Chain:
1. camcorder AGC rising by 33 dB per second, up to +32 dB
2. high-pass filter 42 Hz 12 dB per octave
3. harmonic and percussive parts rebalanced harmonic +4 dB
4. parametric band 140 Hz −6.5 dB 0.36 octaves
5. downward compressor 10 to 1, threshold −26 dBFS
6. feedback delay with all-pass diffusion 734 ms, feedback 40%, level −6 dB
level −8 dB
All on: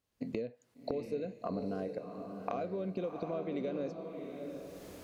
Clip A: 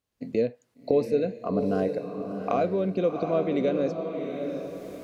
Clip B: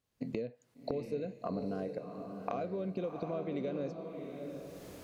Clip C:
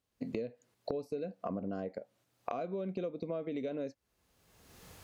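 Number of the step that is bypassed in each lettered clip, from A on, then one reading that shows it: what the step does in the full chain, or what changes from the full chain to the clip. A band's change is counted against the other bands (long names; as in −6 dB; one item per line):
5, 500 Hz band +2.0 dB
4, 125 Hz band +2.0 dB
6, echo-to-direct ratio −5.0 dB to none audible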